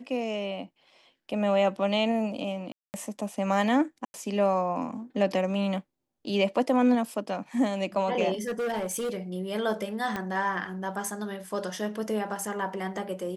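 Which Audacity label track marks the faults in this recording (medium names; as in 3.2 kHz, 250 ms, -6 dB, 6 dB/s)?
2.720000	2.940000	dropout 219 ms
4.050000	4.140000	dropout 91 ms
8.340000	9.180000	clipped -26.5 dBFS
10.160000	10.160000	pop -17 dBFS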